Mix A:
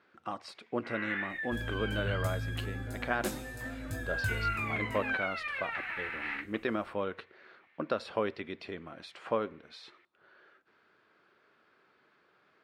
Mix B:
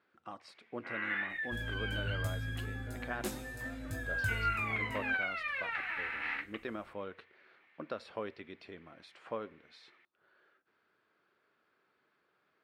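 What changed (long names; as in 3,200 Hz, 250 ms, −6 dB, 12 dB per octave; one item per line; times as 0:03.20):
speech −7.0 dB
reverb: off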